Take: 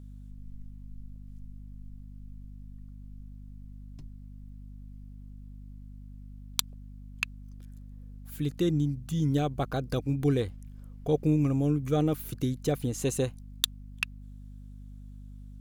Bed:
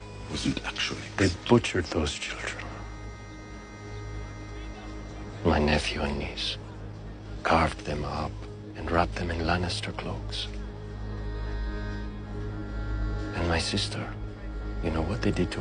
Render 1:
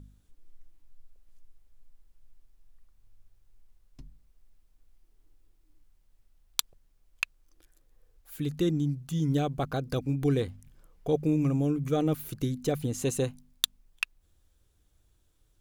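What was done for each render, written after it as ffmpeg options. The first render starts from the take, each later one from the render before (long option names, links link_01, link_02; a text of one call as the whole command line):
ffmpeg -i in.wav -af "bandreject=frequency=50:width_type=h:width=4,bandreject=frequency=100:width_type=h:width=4,bandreject=frequency=150:width_type=h:width=4,bandreject=frequency=200:width_type=h:width=4,bandreject=frequency=250:width_type=h:width=4" out.wav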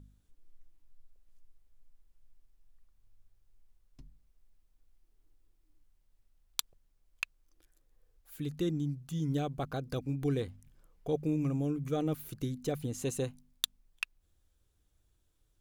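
ffmpeg -i in.wav -af "volume=-5.5dB" out.wav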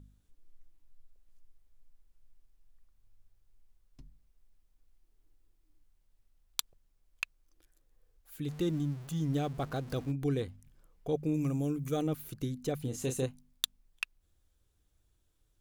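ffmpeg -i in.wav -filter_complex "[0:a]asettb=1/sr,asplit=3[link_01][link_02][link_03];[link_01]atrim=end=8.484[link_04];[link_02]atrim=start=8.48:end=10.12,asetpts=PTS-STARTPTS,afade=type=in:duration=0.004:curve=qsin,afade=type=out:start_time=1.636:duration=0.004:curve=qsin,aeval=exprs='val(0)+0.5*0.00531*sgn(val(0))':channel_layout=same[link_05];[link_03]atrim=start=10.116[link_06];[link_04][link_05]acrossfade=duration=0.004:curve1=hsin:curve2=qsin[link_07];[link_07][link_06]acrossfade=duration=0.004:curve1=qsin:curve2=hsin,asettb=1/sr,asplit=3[link_08][link_09][link_10];[link_08]atrim=end=11.344[link_11];[link_09]atrim=start=11.34:end=12.07,asetpts=PTS-STARTPTS,afade=type=in:duration=0.004:curve=qsin,afade=type=out:start_time=0.726:duration=0.004:curve=qsin,highshelf=frequency=6000:gain=11.5[link_12];[link_10]atrim=start=12.066[link_13];[link_11][link_12]acrossfade=duration=0.004:curve1=hsin:curve2=qsin[link_14];[link_14][link_13]acrossfade=duration=0.004:curve1=qsin:curve2=hsin,asettb=1/sr,asplit=3[link_15][link_16][link_17];[link_15]atrim=end=12.824[link_18];[link_16]atrim=start=12.82:end=13.26,asetpts=PTS-STARTPTS,afade=type=in:duration=0.004:curve=qsin,afade=type=out:start_time=0.436:duration=0.004:curve=qsin,asplit=2[link_19][link_20];[link_20]adelay=31,volume=-7dB[link_21];[link_19][link_21]amix=inputs=2:normalize=0,atrim=end_sample=19404[link_22];[link_17]atrim=start=13.256[link_23];[link_18][link_22]acrossfade=duration=0.004:curve1=hsin:curve2=qsin[link_24];[link_24][link_23]acrossfade=duration=0.004:curve1=qsin:curve2=hsin" out.wav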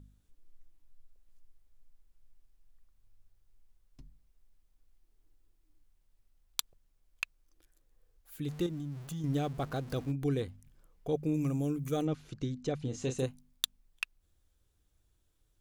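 ffmpeg -i in.wav -filter_complex "[0:a]asettb=1/sr,asplit=3[link_01][link_02][link_03];[link_01]atrim=end=8.664[link_04];[link_02]atrim=start=8.66:end=9.24,asetpts=PTS-STARTPTS,afade=type=in:duration=0.004:curve=qsin,afade=type=out:start_time=0.576:duration=0.004:curve=qsin,acompressor=threshold=-36dB:ratio=4:attack=3.2:release=140:knee=1:detection=peak[link_05];[link_03]atrim=start=9.236[link_06];[link_04][link_05]acrossfade=duration=0.004:curve1=hsin:curve2=qsin[link_07];[link_07][link_06]acrossfade=duration=0.004:curve1=qsin:curve2=hsin,asettb=1/sr,asplit=3[link_08][link_09][link_10];[link_08]atrim=end=12.054[link_11];[link_09]atrim=start=12.05:end=13.19,asetpts=PTS-STARTPTS,afade=type=in:duration=0.004:curve=qsin,afade=type=out:start_time=1.136:duration=0.004:curve=qsin,lowpass=frequency=6700:width=0.5412,lowpass=frequency=6700:width=1.3066[link_12];[link_10]atrim=start=13.186[link_13];[link_11][link_12]acrossfade=duration=0.004:curve1=hsin:curve2=qsin[link_14];[link_14][link_13]acrossfade=duration=0.004:curve1=qsin:curve2=hsin" out.wav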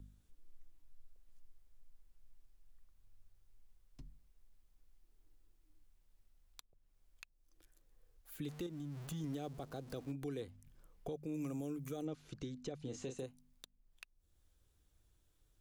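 ffmpeg -i in.wav -filter_complex "[0:a]acrossover=split=250|790|3500[link_01][link_02][link_03][link_04];[link_01]acompressor=threshold=-44dB:ratio=4[link_05];[link_02]acompressor=threshold=-32dB:ratio=4[link_06];[link_03]acompressor=threshold=-51dB:ratio=4[link_07];[link_04]acompressor=threshold=-50dB:ratio=4[link_08];[link_05][link_06][link_07][link_08]amix=inputs=4:normalize=0,alimiter=level_in=9dB:limit=-24dB:level=0:latency=1:release=432,volume=-9dB" out.wav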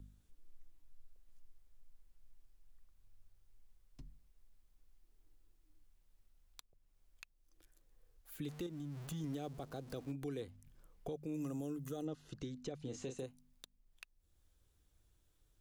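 ffmpeg -i in.wav -filter_complex "[0:a]asettb=1/sr,asplit=3[link_01][link_02][link_03];[link_01]atrim=end=11.374[link_04];[link_02]atrim=start=11.37:end=12.4,asetpts=PTS-STARTPTS,afade=type=in:duration=0.004:curve=qsin,afade=type=out:start_time=1.026:duration=0.004:curve=qsin,asuperstop=centerf=2300:order=8:qfactor=6.5[link_05];[link_03]atrim=start=12.396[link_06];[link_04][link_05]acrossfade=duration=0.004:curve1=hsin:curve2=qsin[link_07];[link_07][link_06]acrossfade=duration=0.004:curve1=qsin:curve2=hsin" out.wav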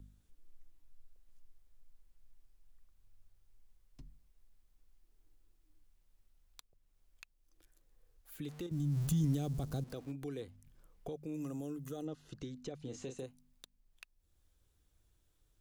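ffmpeg -i in.wav -filter_complex "[0:a]asettb=1/sr,asplit=3[link_01][link_02][link_03];[link_01]atrim=end=8.714[link_04];[link_02]atrim=start=8.71:end=9.84,asetpts=PTS-STARTPTS,afade=type=in:duration=0.004:curve=qsin,afade=type=out:start_time=1.126:duration=0.004:curve=qsin,bass=frequency=250:gain=15,treble=frequency=4000:gain=10[link_05];[link_03]atrim=start=9.836[link_06];[link_04][link_05]acrossfade=duration=0.004:curve1=hsin:curve2=qsin[link_07];[link_07][link_06]acrossfade=duration=0.004:curve1=qsin:curve2=hsin" out.wav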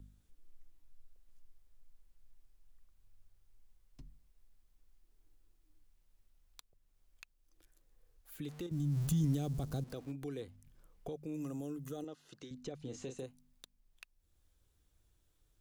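ffmpeg -i in.wav -filter_complex "[0:a]asettb=1/sr,asplit=3[link_01][link_02][link_03];[link_01]atrim=end=12.044[link_04];[link_02]atrim=start=12.04:end=12.51,asetpts=PTS-STARTPTS,afade=type=in:duration=0.004:curve=qsin,afade=type=out:start_time=0.466:duration=0.004:curve=qsin,highpass=frequency=510:poles=1[link_05];[link_03]atrim=start=12.506[link_06];[link_04][link_05]acrossfade=duration=0.004:curve1=hsin:curve2=qsin[link_07];[link_07][link_06]acrossfade=duration=0.004:curve1=qsin:curve2=hsin" out.wav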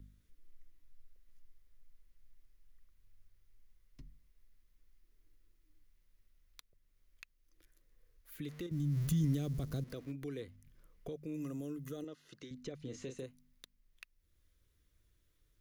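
ffmpeg -i in.wav -af "equalizer=frequency=800:width_type=o:width=0.33:gain=-12,equalizer=frequency=2000:width_type=o:width=0.33:gain=6,equalizer=frequency=8000:width_type=o:width=0.33:gain=-6" out.wav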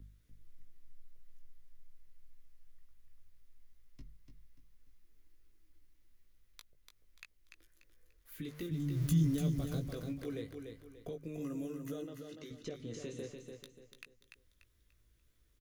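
ffmpeg -i in.wav -filter_complex "[0:a]asplit=2[link_01][link_02];[link_02]adelay=18,volume=-6dB[link_03];[link_01][link_03]amix=inputs=2:normalize=0,asplit=2[link_04][link_05];[link_05]aecho=0:1:292|584|876|1168:0.501|0.17|0.0579|0.0197[link_06];[link_04][link_06]amix=inputs=2:normalize=0" out.wav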